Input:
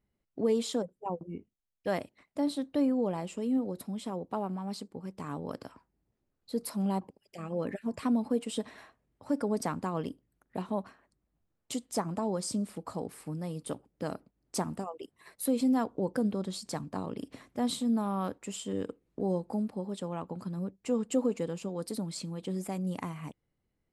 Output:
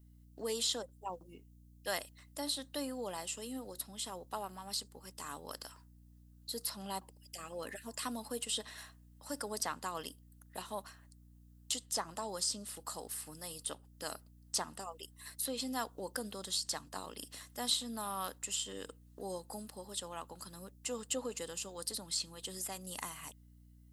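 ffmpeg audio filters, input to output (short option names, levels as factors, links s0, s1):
-filter_complex "[0:a]aderivative,aeval=exprs='val(0)+0.000251*(sin(2*PI*60*n/s)+sin(2*PI*2*60*n/s)/2+sin(2*PI*3*60*n/s)/3+sin(2*PI*4*60*n/s)/4+sin(2*PI*5*60*n/s)/5)':c=same,acrossover=split=4900[s0][s1];[s1]acompressor=threshold=0.002:ratio=6[s2];[s0][s2]amix=inputs=2:normalize=0,bandreject=f=2300:w=5.6,volume=4.73"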